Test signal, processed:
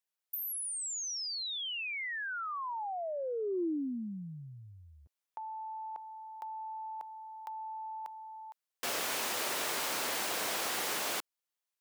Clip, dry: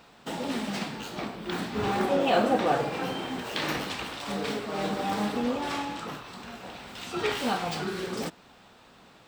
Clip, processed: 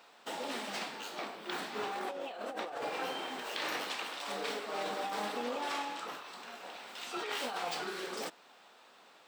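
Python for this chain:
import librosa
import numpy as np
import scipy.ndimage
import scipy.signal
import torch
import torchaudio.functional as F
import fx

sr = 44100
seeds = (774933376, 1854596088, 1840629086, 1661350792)

y = scipy.signal.sosfilt(scipy.signal.butter(2, 450.0, 'highpass', fs=sr, output='sos'), x)
y = fx.over_compress(y, sr, threshold_db=-32.0, ratio=-1.0)
y = y * librosa.db_to_amplitude(-5.0)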